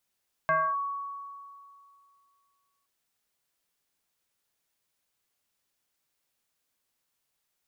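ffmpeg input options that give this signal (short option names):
-f lavfi -i "aevalsrc='0.0944*pow(10,-3*t/2.42)*sin(2*PI*1120*t+1.2*clip(1-t/0.27,0,1)*sin(2*PI*0.43*1120*t))':d=2.37:s=44100"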